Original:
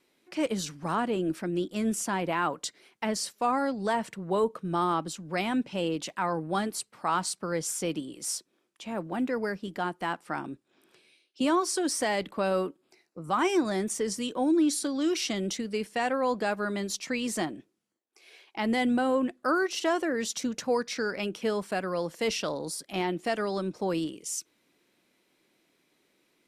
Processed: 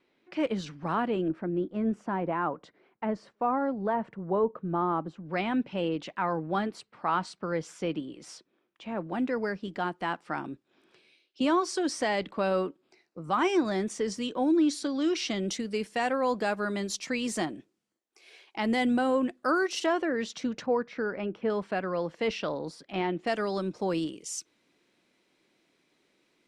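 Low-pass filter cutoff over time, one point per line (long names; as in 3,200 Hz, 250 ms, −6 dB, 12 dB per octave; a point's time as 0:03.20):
3,200 Hz
from 0:01.28 1,300 Hz
from 0:05.26 3,000 Hz
from 0:09.09 5,300 Hz
from 0:15.48 9,300 Hz
from 0:19.86 3,600 Hz
from 0:20.66 1,600 Hz
from 0:21.50 3,100 Hz
from 0:23.27 7,600 Hz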